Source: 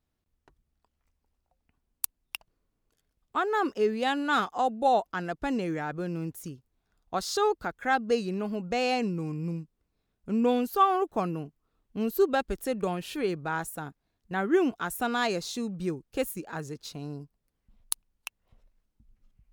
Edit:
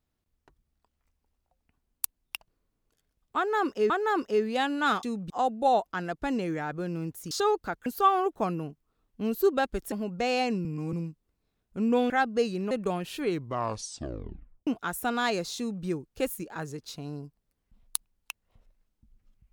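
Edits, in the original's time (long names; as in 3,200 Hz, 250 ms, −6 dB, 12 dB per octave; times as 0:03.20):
0:03.37–0:03.90: repeat, 2 plays
0:06.51–0:07.28: remove
0:07.83–0:08.44: swap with 0:10.62–0:12.68
0:09.17–0:09.45: reverse
0:13.21: tape stop 1.43 s
0:15.55–0:15.82: duplicate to 0:04.50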